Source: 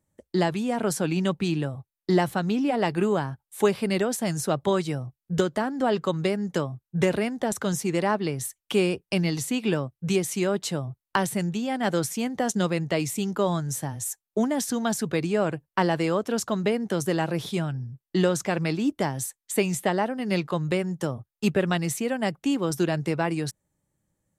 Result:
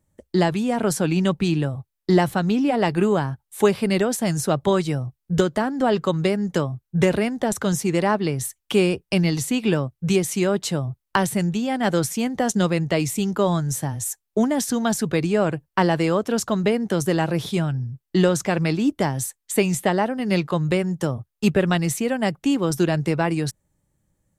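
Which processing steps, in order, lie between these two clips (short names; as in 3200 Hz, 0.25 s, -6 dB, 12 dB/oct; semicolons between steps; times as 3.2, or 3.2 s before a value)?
low shelf 78 Hz +10 dB; gain +3.5 dB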